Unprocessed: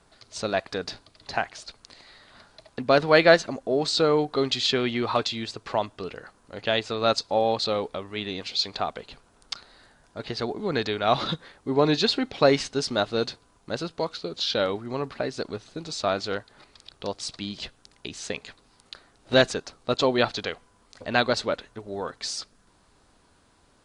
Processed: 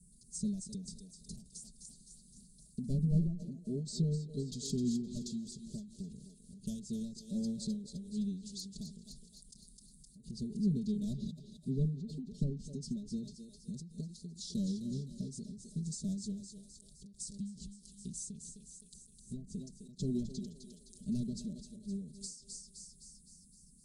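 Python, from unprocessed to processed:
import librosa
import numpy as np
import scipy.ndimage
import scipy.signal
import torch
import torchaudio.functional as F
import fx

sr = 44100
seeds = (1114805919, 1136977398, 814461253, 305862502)

p1 = fx.low_shelf(x, sr, hz=250.0, db=-7.0)
p2 = fx.clip_asym(p1, sr, top_db=-15.5, bottom_db=-10.0)
p3 = scipy.signal.sosfilt(scipy.signal.ellip(3, 1.0, 70, [190.0, 8600.0], 'bandstop', fs=sr, output='sos'), p2)
p4 = fx.env_lowpass_down(p3, sr, base_hz=1200.0, full_db=-33.0)
p5 = p4 + 1.0 * np.pad(p4, (int(4.9 * sr / 1000.0), 0))[:len(p4)]
p6 = p5 + fx.echo_thinned(p5, sr, ms=258, feedback_pct=59, hz=500.0, wet_db=-7.0, dry=0)
p7 = fx.end_taper(p6, sr, db_per_s=100.0)
y = F.gain(torch.from_numpy(p7), 6.0).numpy()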